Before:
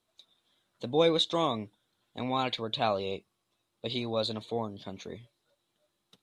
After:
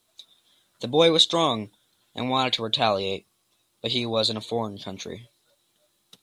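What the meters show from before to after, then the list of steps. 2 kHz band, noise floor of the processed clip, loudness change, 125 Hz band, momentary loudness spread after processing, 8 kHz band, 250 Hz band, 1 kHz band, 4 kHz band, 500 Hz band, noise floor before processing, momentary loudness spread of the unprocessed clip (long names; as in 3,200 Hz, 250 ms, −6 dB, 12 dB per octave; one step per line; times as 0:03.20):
+8.0 dB, −70 dBFS, +7.5 dB, +5.5 dB, 19 LU, +13.0 dB, +5.5 dB, +6.0 dB, +10.5 dB, +5.5 dB, −80 dBFS, 18 LU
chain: high-shelf EQ 3,900 Hz +10 dB
level +5.5 dB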